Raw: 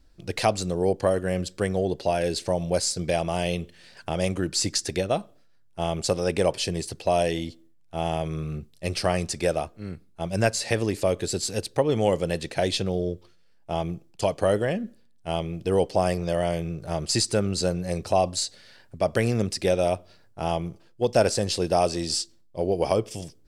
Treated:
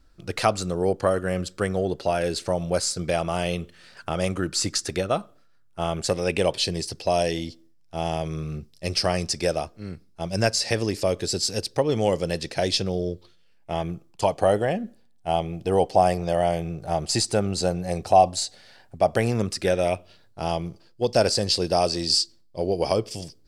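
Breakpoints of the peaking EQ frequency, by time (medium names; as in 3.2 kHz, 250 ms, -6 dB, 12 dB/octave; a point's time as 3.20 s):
peaking EQ +9.5 dB 0.39 oct
5.89 s 1.3 kHz
6.79 s 5.2 kHz
13.07 s 5.2 kHz
14.36 s 760 Hz
19.21 s 760 Hz
20.41 s 4.7 kHz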